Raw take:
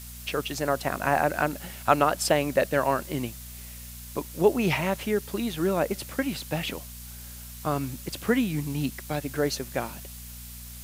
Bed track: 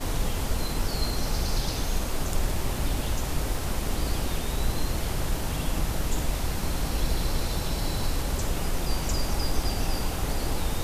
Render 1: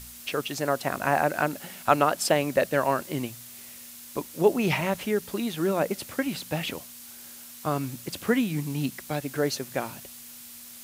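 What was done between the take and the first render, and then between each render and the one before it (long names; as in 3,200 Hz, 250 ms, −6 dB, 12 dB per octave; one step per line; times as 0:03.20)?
hum removal 60 Hz, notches 3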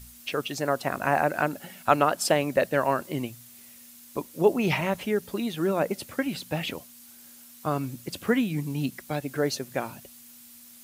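broadband denoise 7 dB, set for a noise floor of −45 dBFS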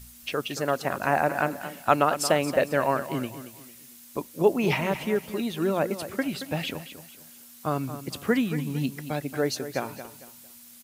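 repeating echo 226 ms, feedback 32%, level −12 dB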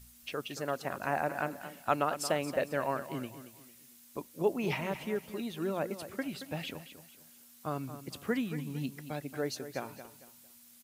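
level −8.5 dB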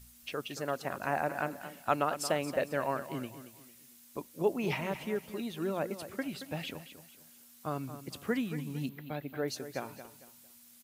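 0:08.89–0:09.48: flat-topped bell 7,200 Hz −15 dB 1.3 octaves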